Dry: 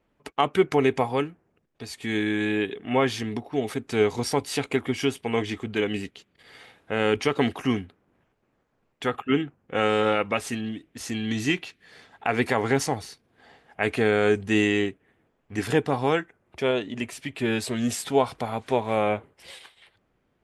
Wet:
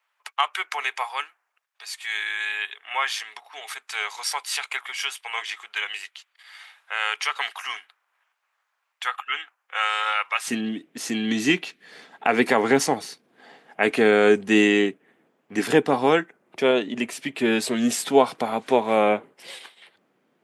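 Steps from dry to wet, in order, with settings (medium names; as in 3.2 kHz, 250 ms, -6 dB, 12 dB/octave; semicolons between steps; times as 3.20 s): high-pass 980 Hz 24 dB/octave, from 10.48 s 180 Hz; trim +4.5 dB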